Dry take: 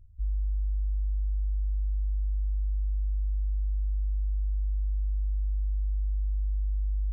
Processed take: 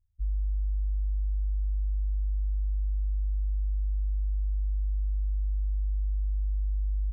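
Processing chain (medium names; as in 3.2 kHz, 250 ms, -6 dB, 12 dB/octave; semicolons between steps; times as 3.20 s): upward expansion 2.5:1, over -41 dBFS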